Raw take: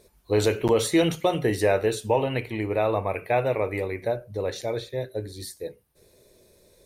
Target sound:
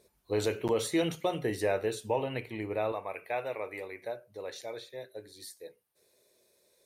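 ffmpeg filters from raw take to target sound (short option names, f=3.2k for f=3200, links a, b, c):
-af "asetnsamples=n=441:p=0,asendcmd='2.92 highpass f 660',highpass=f=110:p=1,volume=-7.5dB"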